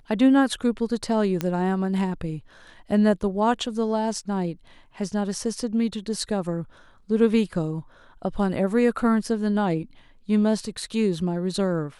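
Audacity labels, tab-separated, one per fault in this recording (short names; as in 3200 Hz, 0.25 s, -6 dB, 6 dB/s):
1.410000	1.410000	pop -11 dBFS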